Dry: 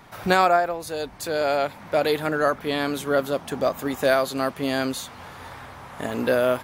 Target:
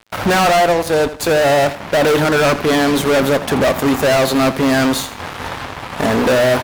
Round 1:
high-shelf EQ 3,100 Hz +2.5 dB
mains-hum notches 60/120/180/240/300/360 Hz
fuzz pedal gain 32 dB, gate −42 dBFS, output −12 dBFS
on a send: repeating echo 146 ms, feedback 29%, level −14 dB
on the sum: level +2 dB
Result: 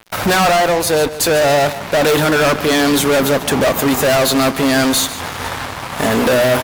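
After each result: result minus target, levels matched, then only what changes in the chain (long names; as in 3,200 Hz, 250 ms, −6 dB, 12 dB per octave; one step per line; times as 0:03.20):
echo 64 ms late; 8,000 Hz band +5.5 dB
change: repeating echo 82 ms, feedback 29%, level −14 dB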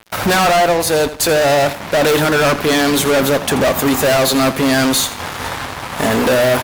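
8,000 Hz band +5.5 dB
change: high-shelf EQ 3,100 Hz −8 dB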